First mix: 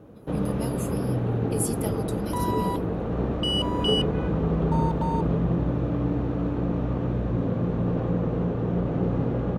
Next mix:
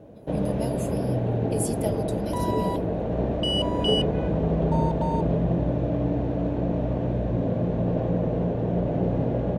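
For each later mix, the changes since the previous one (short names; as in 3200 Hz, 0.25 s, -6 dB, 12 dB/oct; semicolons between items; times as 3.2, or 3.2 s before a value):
master: add thirty-one-band EQ 630 Hz +10 dB, 1250 Hz -11 dB, 12500 Hz -8 dB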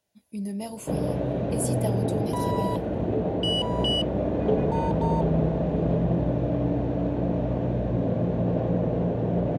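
first sound: entry +0.60 s; master: add HPF 56 Hz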